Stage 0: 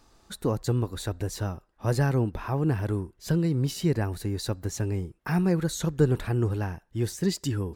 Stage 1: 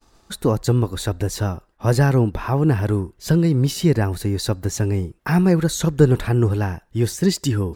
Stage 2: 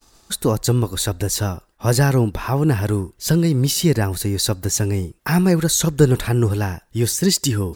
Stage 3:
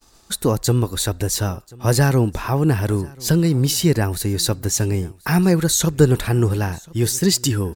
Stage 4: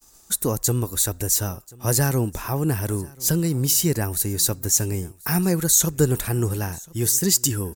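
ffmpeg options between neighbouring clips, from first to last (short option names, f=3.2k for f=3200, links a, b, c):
-af "agate=range=-33dB:threshold=-54dB:ratio=3:detection=peak,volume=8dB"
-af "highshelf=f=3.7k:g=11"
-af "aecho=1:1:1035:0.0631"
-af "aexciter=amount=2.6:drive=7.6:freq=5.8k,volume=-5.5dB"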